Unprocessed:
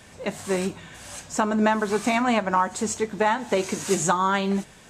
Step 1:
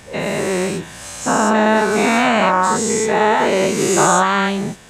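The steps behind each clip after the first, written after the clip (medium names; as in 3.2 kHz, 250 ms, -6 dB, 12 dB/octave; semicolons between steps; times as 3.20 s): every event in the spectrogram widened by 240 ms; trim +1 dB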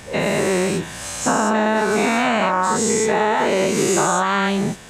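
compression, threshold -17 dBFS, peak gain reduction 8 dB; trim +2.5 dB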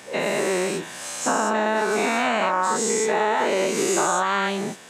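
high-pass 260 Hz 12 dB/octave; trim -3 dB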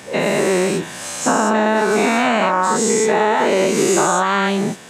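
bass shelf 220 Hz +9.5 dB; trim +4.5 dB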